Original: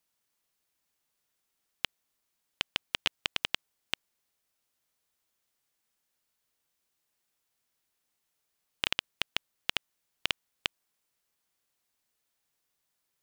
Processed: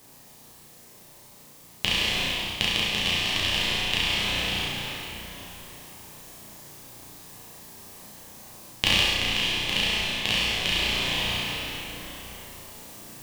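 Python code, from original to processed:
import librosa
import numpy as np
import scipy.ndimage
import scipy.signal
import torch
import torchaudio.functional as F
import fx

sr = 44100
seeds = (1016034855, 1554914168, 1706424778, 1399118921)

p1 = fx.rev_plate(x, sr, seeds[0], rt60_s=4.2, hf_ratio=0.7, predelay_ms=0, drr_db=-9.0)
p2 = fx.quant_dither(p1, sr, seeds[1], bits=8, dither='triangular')
p3 = p1 + F.gain(torch.from_numpy(p2), -10.0).numpy()
p4 = fx.dmg_noise_band(p3, sr, seeds[2], low_hz=110.0, high_hz=1600.0, level_db=-62.0)
p5 = fx.peak_eq(p4, sr, hz=1400.0, db=-11.5, octaves=0.29)
p6 = p5 + fx.room_flutter(p5, sr, wall_m=5.8, rt60_s=0.77, dry=0)
p7 = fx.rider(p6, sr, range_db=10, speed_s=0.5)
p8 = fx.bass_treble(p7, sr, bass_db=9, treble_db=3)
y = F.gain(torch.from_numpy(p8), -2.0).numpy()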